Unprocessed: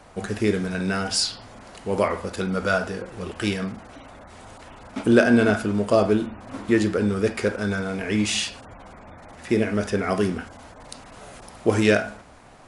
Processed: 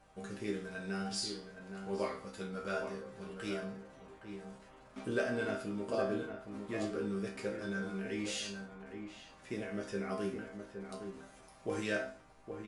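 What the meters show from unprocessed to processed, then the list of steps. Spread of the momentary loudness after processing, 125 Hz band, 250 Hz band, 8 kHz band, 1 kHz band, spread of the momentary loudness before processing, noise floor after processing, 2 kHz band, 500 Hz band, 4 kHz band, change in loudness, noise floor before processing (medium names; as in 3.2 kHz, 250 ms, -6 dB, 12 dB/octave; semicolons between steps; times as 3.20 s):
13 LU, -17.0 dB, -16.5 dB, -15.0 dB, -14.5 dB, 21 LU, -59 dBFS, -14.5 dB, -14.5 dB, -15.0 dB, -16.5 dB, -47 dBFS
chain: chord resonator C3 minor, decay 0.35 s; hum 50 Hz, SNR 33 dB; echo from a far wall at 140 m, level -7 dB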